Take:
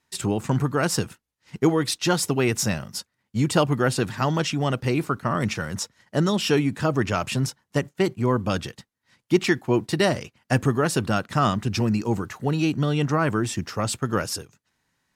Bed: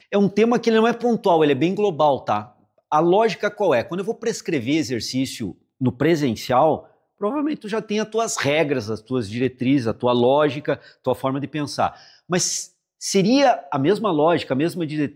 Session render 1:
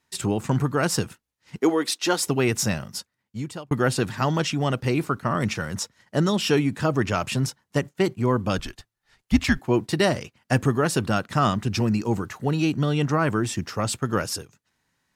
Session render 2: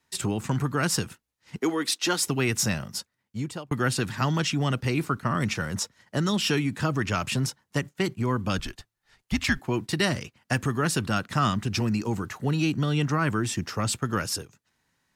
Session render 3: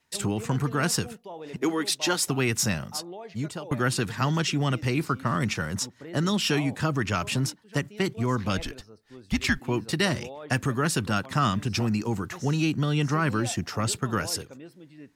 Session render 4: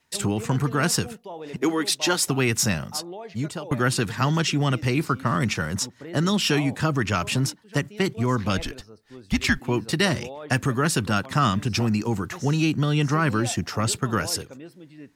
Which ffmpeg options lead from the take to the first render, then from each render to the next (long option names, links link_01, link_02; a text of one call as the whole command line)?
ffmpeg -i in.wav -filter_complex "[0:a]asettb=1/sr,asplit=3[link_01][link_02][link_03];[link_01]atrim=end=1.594[link_04];[link_02]atrim=start=1.59:end=2.27,asetpts=PTS-STARTPTS,afade=type=in:duration=0.004:curve=qsin,afade=type=out:start_time=0.676:duration=0.004:curve=qsin,highpass=frequency=240:width=0.5412,highpass=frequency=240:width=1.3066[link_05];[link_03]atrim=start=2.266[link_06];[link_04][link_05]acrossfade=duration=0.004:curve1=hsin:curve2=qsin[link_07];[link_07][link_06]acrossfade=duration=0.004:curve1=qsin:curve2=hsin,asettb=1/sr,asplit=3[link_08][link_09][link_10];[link_08]atrim=end=8.584[link_11];[link_09]atrim=start=8.58:end=9.59,asetpts=PTS-STARTPTS,afade=type=in:duration=0.004:curve=qsin,afade=type=out:start_time=1.006:duration=0.004:curve=qsin,afreqshift=-110[link_12];[link_10]atrim=start=9.586[link_13];[link_11][link_12]acrossfade=duration=0.004:curve1=hsin:curve2=qsin[link_14];[link_14][link_13]acrossfade=duration=0.004:curve1=qsin:curve2=hsin,asplit=2[link_15][link_16];[link_15]atrim=end=3.71,asetpts=PTS-STARTPTS,afade=type=out:start_time=2.89:duration=0.82[link_17];[link_16]atrim=start=3.71,asetpts=PTS-STARTPTS,afade=type=in:duration=0.004:curve=hsin[link_18];[link_17][link_18]concat=n=2:v=0:a=1" out.wav
ffmpeg -i in.wav -filter_complex "[0:a]acrossover=split=340|1000[link_01][link_02][link_03];[link_01]alimiter=limit=-19.5dB:level=0:latency=1:release=148[link_04];[link_02]acompressor=threshold=-36dB:ratio=6[link_05];[link_04][link_05][link_03]amix=inputs=3:normalize=0" out.wav
ffmpeg -i in.wav -i bed.wav -filter_complex "[1:a]volume=-24dB[link_01];[0:a][link_01]amix=inputs=2:normalize=0" out.wav
ffmpeg -i in.wav -af "volume=3dB" out.wav